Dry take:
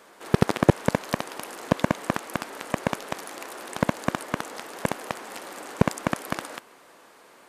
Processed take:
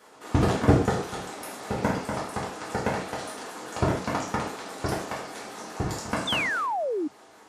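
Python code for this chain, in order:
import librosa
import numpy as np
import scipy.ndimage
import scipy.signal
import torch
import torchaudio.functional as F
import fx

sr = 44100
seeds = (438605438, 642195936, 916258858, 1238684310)

y = fx.pitch_ramps(x, sr, semitones=-8.5, every_ms=203)
y = fx.rev_gated(y, sr, seeds[0], gate_ms=180, shape='falling', drr_db=-7.5)
y = fx.spec_paint(y, sr, seeds[1], shape='fall', start_s=6.27, length_s=0.81, low_hz=280.0, high_hz=3700.0, level_db=-21.0)
y = y * 10.0 ** (-6.5 / 20.0)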